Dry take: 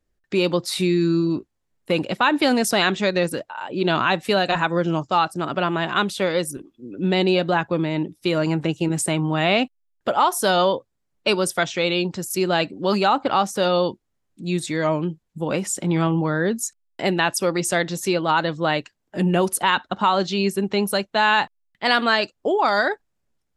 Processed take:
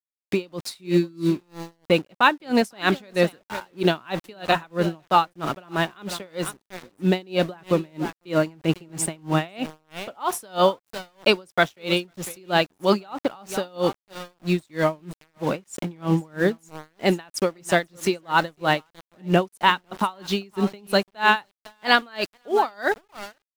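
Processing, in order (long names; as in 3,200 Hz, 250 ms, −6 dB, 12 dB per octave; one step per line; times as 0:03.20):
single-tap delay 501 ms −15 dB
centre clipping without the shift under −32 dBFS
high-shelf EQ 4,900 Hz −4 dB
tremolo with a sine in dB 3.1 Hz, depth 32 dB
level +3.5 dB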